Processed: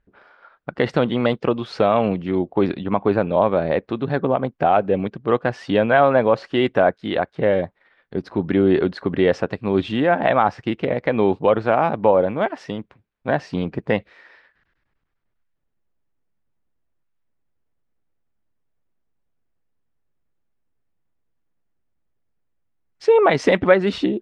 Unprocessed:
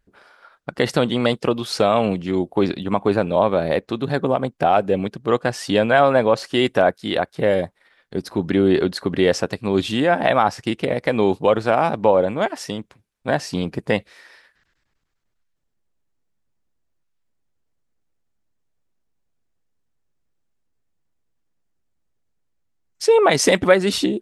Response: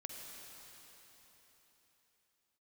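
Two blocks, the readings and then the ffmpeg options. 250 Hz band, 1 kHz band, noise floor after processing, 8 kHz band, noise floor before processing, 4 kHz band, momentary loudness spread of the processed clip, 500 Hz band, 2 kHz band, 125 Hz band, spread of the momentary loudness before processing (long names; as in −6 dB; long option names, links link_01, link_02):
0.0 dB, 0.0 dB, −71 dBFS, below −15 dB, −70 dBFS, −6.5 dB, 9 LU, 0.0 dB, −1.0 dB, 0.0 dB, 9 LU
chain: -af "lowpass=2600"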